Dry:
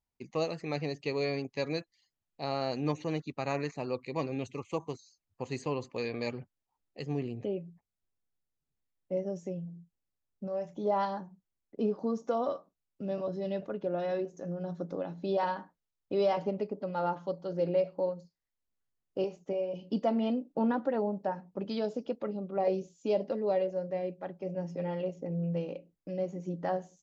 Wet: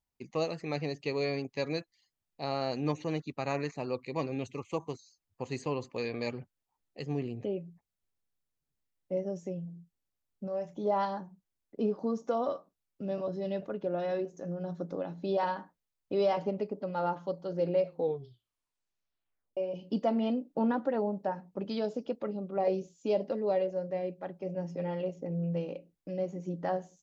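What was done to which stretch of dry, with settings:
0:17.84: tape stop 1.73 s

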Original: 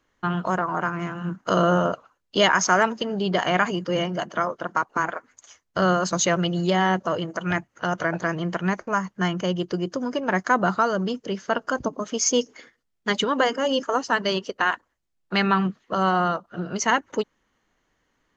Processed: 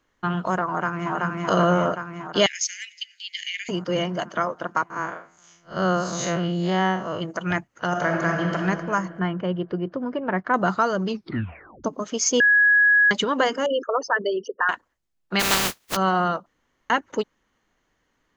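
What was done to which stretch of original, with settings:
0:00.67–0:01.13: delay throw 380 ms, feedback 70%, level −0.5 dB
0:02.46–0:03.69: Butterworth high-pass 2,000 Hz 72 dB per octave
0:04.90–0:07.21: spectrum smeared in time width 120 ms
0:07.87–0:08.55: thrown reverb, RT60 2.3 s, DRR 0 dB
0:09.19–0:10.54: high-frequency loss of the air 440 metres
0:11.07: tape stop 0.77 s
0:12.40–0:13.11: beep over 1,670 Hz −13 dBFS
0:13.66–0:14.69: spectral envelope exaggerated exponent 3
0:15.39–0:15.95: compressing power law on the bin magnitudes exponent 0.19
0:16.46–0:16.90: fill with room tone

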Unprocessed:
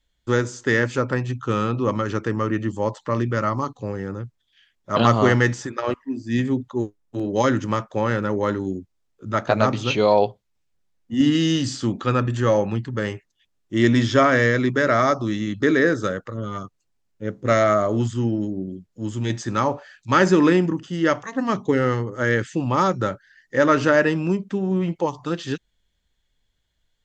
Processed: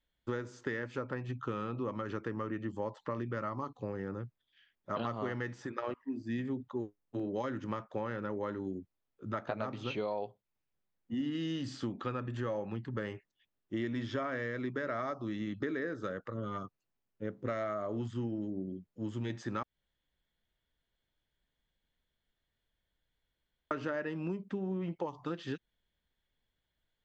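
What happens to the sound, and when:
0:19.63–0:23.71: fill with room tone
whole clip: low-shelf EQ 92 Hz −9 dB; downward compressor 6 to 1, threshold −27 dBFS; parametric band 7,400 Hz −13 dB 1.4 octaves; level −6 dB

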